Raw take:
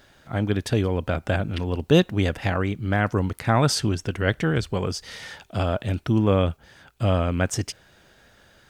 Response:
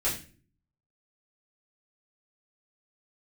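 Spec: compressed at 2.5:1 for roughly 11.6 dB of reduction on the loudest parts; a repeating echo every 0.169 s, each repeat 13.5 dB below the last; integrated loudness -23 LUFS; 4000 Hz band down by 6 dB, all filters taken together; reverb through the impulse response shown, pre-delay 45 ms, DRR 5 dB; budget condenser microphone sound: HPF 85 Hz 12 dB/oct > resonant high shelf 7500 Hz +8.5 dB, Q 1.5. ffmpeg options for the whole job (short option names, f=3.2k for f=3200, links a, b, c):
-filter_complex "[0:a]equalizer=f=4k:t=o:g=-6,acompressor=threshold=-29dB:ratio=2.5,aecho=1:1:169|338:0.211|0.0444,asplit=2[a][b];[1:a]atrim=start_sample=2205,adelay=45[c];[b][c]afir=irnorm=-1:irlink=0,volume=-13dB[d];[a][d]amix=inputs=2:normalize=0,highpass=85,highshelf=f=7.5k:t=q:w=1.5:g=8.5,volume=7dB"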